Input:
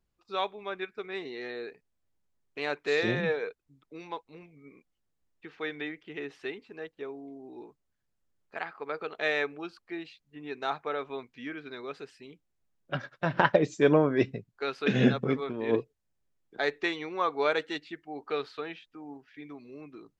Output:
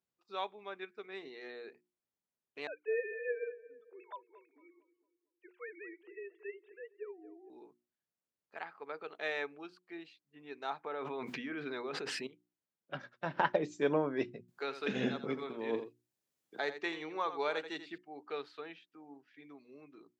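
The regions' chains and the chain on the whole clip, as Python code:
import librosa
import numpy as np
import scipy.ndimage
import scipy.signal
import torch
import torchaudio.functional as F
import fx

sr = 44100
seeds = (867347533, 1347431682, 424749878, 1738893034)

y = fx.chain(x, sr, fx.sine_speech(),
    fx.echo_filtered(ms=228, feedback_pct=46, hz=1200.0, wet_db=-14), at=(2.67, 7.5))
y = fx.chain(y, sr, fx.high_shelf(hz=3700.0, db=-9.0),
    fx.env_flatten(amount_pct=100), at=(10.84, 12.27))
y = fx.chain(y, sr, fx.high_shelf(hz=6400.0, db=4.5),
    fx.echo_single(ms=84, db=-11.5),
    fx.band_squash(depth_pct=40), at=(14.48, 17.98))
y = scipy.signal.sosfilt(scipy.signal.butter(2, 170.0, 'highpass', fs=sr, output='sos'), y)
y = fx.hum_notches(y, sr, base_hz=60, count=6)
y = fx.dynamic_eq(y, sr, hz=880.0, q=5.8, threshold_db=-48.0, ratio=4.0, max_db=5)
y = F.gain(torch.from_numpy(y), -8.5).numpy()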